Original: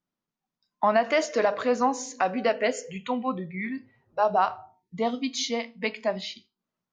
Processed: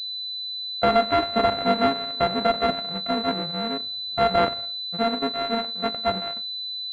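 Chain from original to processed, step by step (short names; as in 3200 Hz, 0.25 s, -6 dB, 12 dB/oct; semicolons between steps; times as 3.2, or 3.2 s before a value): sample sorter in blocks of 64 samples; pulse-width modulation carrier 4000 Hz; gain +3.5 dB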